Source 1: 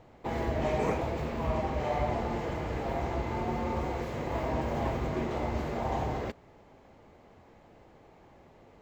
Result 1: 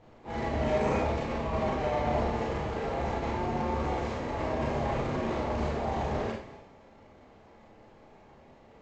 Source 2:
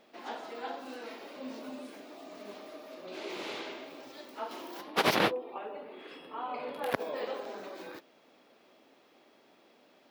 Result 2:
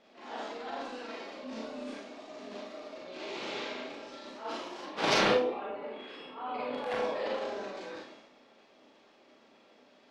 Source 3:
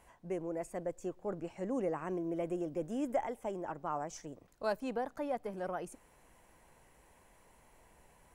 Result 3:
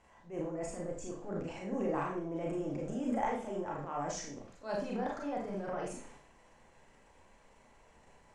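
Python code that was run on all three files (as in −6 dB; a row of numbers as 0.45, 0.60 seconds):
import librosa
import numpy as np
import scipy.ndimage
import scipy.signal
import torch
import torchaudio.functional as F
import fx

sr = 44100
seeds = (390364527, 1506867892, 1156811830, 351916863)

y = fx.transient(x, sr, attack_db=-10, sustain_db=9)
y = scipy.signal.sosfilt(scipy.signal.butter(4, 7400.0, 'lowpass', fs=sr, output='sos'), y)
y = fx.rev_schroeder(y, sr, rt60_s=0.39, comb_ms=28, drr_db=-2.0)
y = y * librosa.db_to_amplitude(-2.5)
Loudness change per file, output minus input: +1.5, +1.5, +0.5 LU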